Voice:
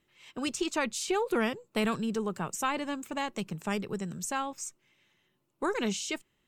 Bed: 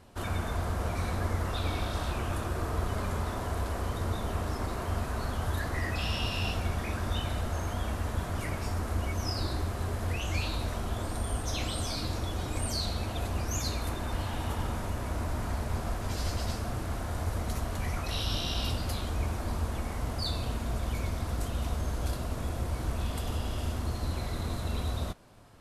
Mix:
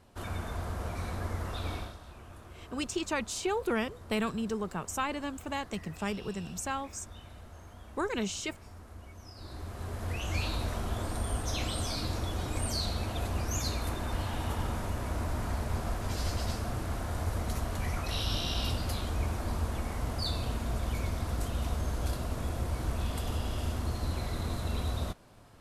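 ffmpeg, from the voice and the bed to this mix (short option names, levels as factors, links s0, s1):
-filter_complex "[0:a]adelay=2350,volume=0.794[s0];[1:a]volume=3.98,afade=t=out:st=1.74:d=0.23:silence=0.237137,afade=t=in:st=9.35:d=1.1:silence=0.149624[s1];[s0][s1]amix=inputs=2:normalize=0"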